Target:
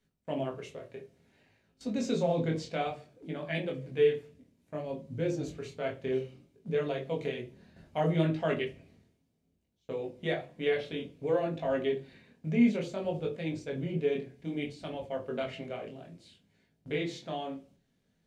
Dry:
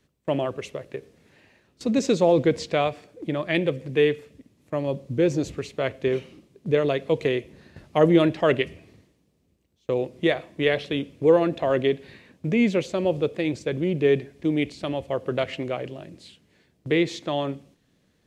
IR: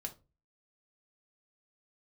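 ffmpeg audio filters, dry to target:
-filter_complex "[0:a]flanger=delay=18.5:depth=7:speed=0.6[a];[1:a]atrim=start_sample=2205[b];[a][b]afir=irnorm=-1:irlink=0,volume=-4.5dB"

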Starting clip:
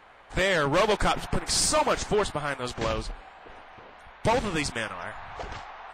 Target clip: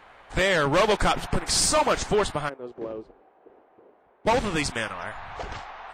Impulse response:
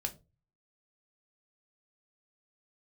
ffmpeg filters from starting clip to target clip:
-filter_complex "[0:a]asplit=3[a][b][c];[a]afade=t=out:st=2.48:d=0.02[d];[b]bandpass=f=380:t=q:w=2.6:csg=0,afade=t=in:st=2.48:d=0.02,afade=t=out:st=4.26:d=0.02[e];[c]afade=t=in:st=4.26:d=0.02[f];[d][e][f]amix=inputs=3:normalize=0,volume=2dB"

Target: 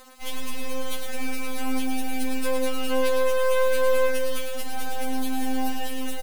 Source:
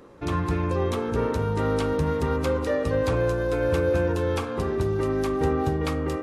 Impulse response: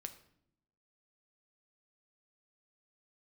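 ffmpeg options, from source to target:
-filter_complex "[0:a]highshelf=f=1.7k:t=q:w=1.5:g=11,bandreject=f=50:t=h:w=6,bandreject=f=100:t=h:w=6,bandreject=f=150:t=h:w=6,bandreject=f=200:t=h:w=6,bandreject=f=250:t=h:w=6,bandreject=f=300:t=h:w=6,bandreject=f=350:t=h:w=6,bandreject=f=400:t=h:w=6,bandreject=f=450:t=h:w=6,alimiter=limit=-16dB:level=0:latency=1:release=152,acrossover=split=190|1500[a][b][c];[b]acompressor=mode=upward:threshold=-34dB:ratio=2.5[d];[a][d][c]amix=inputs=3:normalize=0,aexciter=amount=4.8:drive=3.4:freq=9.2k,aeval=exprs='max(val(0),0)':c=same,acrusher=bits=5:mix=0:aa=0.000001,aecho=1:1:108:0.501,afftfilt=real='re*3.46*eq(mod(b,12),0)':imag='im*3.46*eq(mod(b,12),0)':win_size=2048:overlap=0.75"

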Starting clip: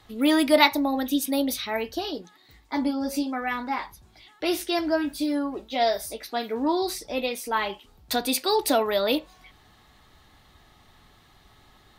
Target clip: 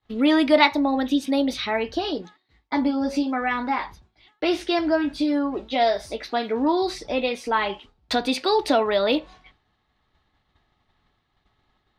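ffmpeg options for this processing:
-filter_complex "[0:a]agate=range=-33dB:threshold=-43dB:ratio=3:detection=peak,lowpass=4.1k,asplit=2[a][b];[b]acompressor=threshold=-30dB:ratio=6,volume=1dB[c];[a][c]amix=inputs=2:normalize=0"

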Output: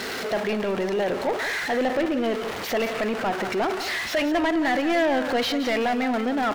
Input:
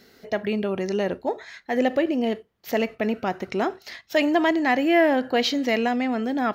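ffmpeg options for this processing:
-filter_complex "[0:a]aeval=exprs='val(0)+0.5*0.0473*sgn(val(0))':c=same,asplit=2[a][b];[b]highpass=f=720:p=1,volume=21dB,asoftclip=type=tanh:threshold=-8dB[c];[a][c]amix=inputs=2:normalize=0,lowpass=f=2.4k:p=1,volume=-6dB,asplit=2[d][e];[e]aecho=0:1:174:0.282[f];[d][f]amix=inputs=2:normalize=0,volume=-7.5dB"

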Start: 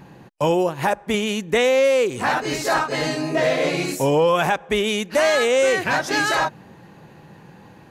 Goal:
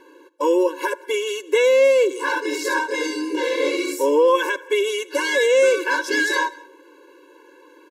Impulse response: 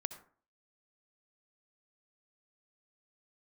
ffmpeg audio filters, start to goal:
-filter_complex "[0:a]aecho=1:1:185:0.0668,asplit=2[a][b];[1:a]atrim=start_sample=2205[c];[b][c]afir=irnorm=-1:irlink=0,volume=-9dB[d];[a][d]amix=inputs=2:normalize=0,afftfilt=real='re*eq(mod(floor(b*sr/1024/290),2),1)':imag='im*eq(mod(floor(b*sr/1024/290),2),1)':win_size=1024:overlap=0.75"

